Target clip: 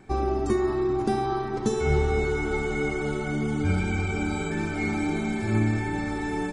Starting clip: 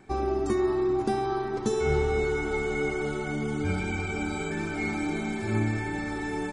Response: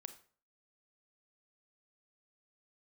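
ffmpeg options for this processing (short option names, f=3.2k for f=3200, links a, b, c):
-filter_complex "[0:a]lowshelf=f=200:g=4.5,asplit=2[a][b];[1:a]atrim=start_sample=2205[c];[b][c]afir=irnorm=-1:irlink=0,volume=11dB[d];[a][d]amix=inputs=2:normalize=0,volume=-8dB"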